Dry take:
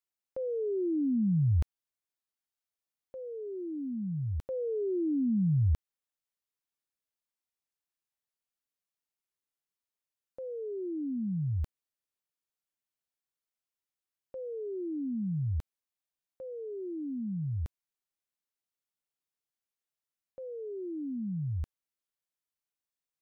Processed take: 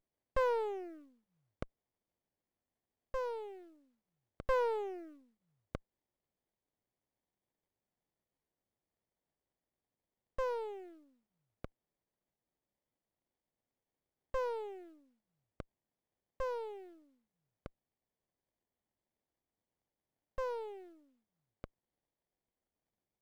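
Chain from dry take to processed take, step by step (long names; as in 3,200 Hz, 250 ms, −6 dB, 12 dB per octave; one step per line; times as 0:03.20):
elliptic high-pass filter 530 Hz, stop band 60 dB
leveller curve on the samples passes 1
windowed peak hold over 33 samples
level +8 dB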